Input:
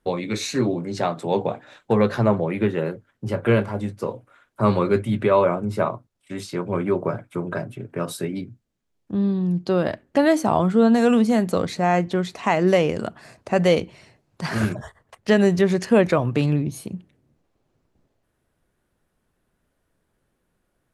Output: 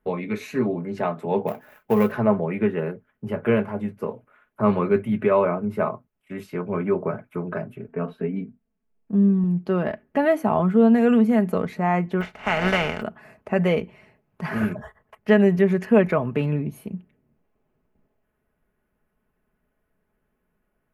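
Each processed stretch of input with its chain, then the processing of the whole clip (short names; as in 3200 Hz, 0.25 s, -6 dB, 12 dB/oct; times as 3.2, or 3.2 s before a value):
1.47–2.12 switching dead time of 0.12 ms + high shelf 9100 Hz +6 dB
7.88–9.44 air absorption 340 m + comb 4.4 ms, depth 64%
12.2–13.01 spectral contrast lowered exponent 0.36 + air absorption 120 m + comb 1.4 ms, depth 35%
whole clip: band shelf 5800 Hz -15 dB; comb 4.7 ms, depth 47%; gain -2.5 dB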